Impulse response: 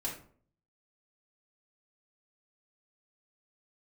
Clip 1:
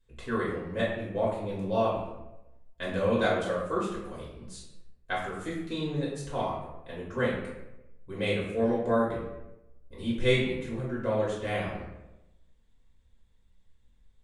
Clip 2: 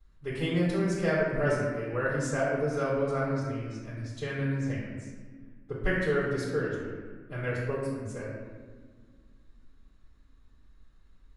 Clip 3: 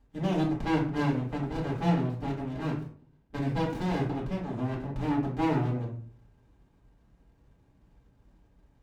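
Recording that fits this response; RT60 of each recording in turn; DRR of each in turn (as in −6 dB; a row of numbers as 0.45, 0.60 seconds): 3; 0.95, 1.7, 0.50 seconds; −7.0, −12.0, −4.5 decibels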